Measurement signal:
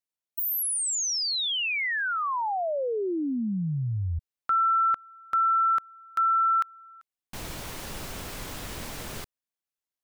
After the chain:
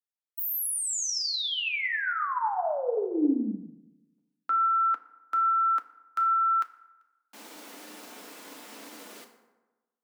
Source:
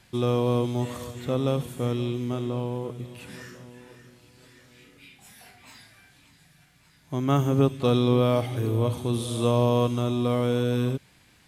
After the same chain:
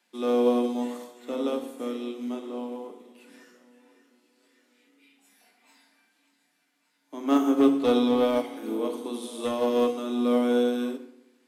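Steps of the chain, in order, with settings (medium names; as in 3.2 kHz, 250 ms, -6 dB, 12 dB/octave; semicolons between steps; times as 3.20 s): steep high-pass 200 Hz 72 dB/octave; hard clipper -17 dBFS; FDN reverb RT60 1.2 s, low-frequency decay 1×, high-frequency decay 0.5×, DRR 2.5 dB; upward expansion 1.5:1, over -41 dBFS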